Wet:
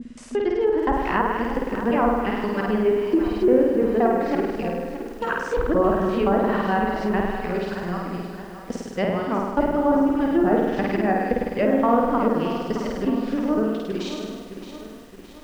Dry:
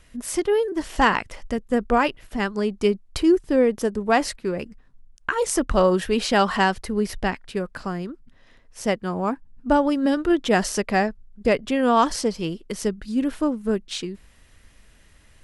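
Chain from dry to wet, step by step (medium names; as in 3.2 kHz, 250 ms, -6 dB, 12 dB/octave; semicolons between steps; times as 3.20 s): time reversed locally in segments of 174 ms; de-esser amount 75%; low-pass 8.2 kHz 24 dB/octave; on a send: flutter echo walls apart 8.8 m, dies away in 1.2 s; on the sum: low-pass that closes with the level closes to 1.2 kHz, closed at -13.5 dBFS; bit-crushed delay 619 ms, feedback 55%, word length 7-bit, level -11 dB; trim -2 dB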